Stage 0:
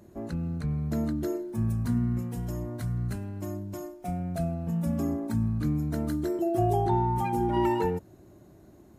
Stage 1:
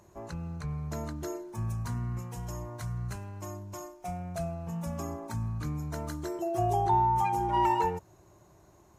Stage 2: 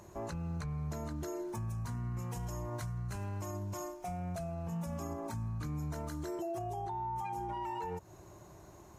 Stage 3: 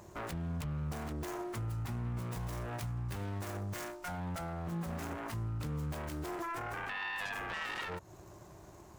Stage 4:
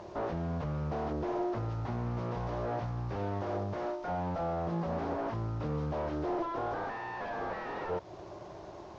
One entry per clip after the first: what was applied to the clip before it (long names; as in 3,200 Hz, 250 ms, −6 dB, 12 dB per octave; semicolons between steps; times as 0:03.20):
graphic EQ with 15 bands 250 Hz −12 dB, 1,000 Hz +10 dB, 2,500 Hz +4 dB, 6,300 Hz +9 dB; level −3.5 dB
downward compressor 3 to 1, threshold −38 dBFS, peak gain reduction 12.5 dB; brickwall limiter −36 dBFS, peak gain reduction 8.5 dB; level +4.5 dB
phase distortion by the signal itself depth 0.52 ms; level +1 dB
linear delta modulator 32 kbit/s, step −56 dBFS; parametric band 590 Hz +12 dB 2.1 octaves